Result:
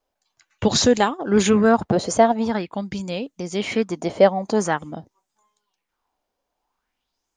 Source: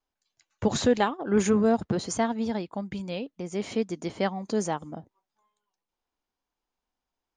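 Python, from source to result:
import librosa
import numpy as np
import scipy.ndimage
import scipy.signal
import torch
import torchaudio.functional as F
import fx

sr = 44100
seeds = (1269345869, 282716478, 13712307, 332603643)

y = fx.bell_lfo(x, sr, hz=0.47, low_hz=550.0, high_hz=7700.0, db=12)
y = y * 10.0 ** (5.5 / 20.0)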